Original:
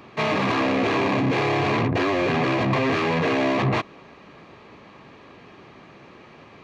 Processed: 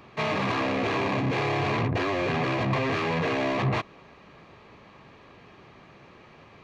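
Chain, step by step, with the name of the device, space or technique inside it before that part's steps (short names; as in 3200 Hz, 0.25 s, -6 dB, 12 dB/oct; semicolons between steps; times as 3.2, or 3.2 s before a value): low shelf boost with a cut just above (low shelf 90 Hz +6.5 dB; bell 280 Hz -3.5 dB 0.95 oct); gain -4 dB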